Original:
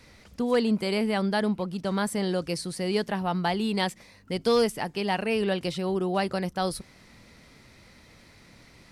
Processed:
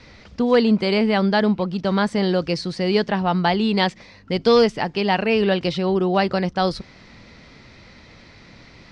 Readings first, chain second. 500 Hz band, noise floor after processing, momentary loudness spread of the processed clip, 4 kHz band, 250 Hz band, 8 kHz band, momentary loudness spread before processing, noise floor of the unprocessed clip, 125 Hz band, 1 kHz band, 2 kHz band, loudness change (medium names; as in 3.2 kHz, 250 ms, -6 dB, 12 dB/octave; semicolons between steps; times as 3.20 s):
+7.5 dB, -47 dBFS, 7 LU, +7.0 dB, +7.5 dB, no reading, 7 LU, -55 dBFS, +7.5 dB, +7.5 dB, +7.5 dB, +7.5 dB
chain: low-pass 5.5 kHz 24 dB/octave; trim +7.5 dB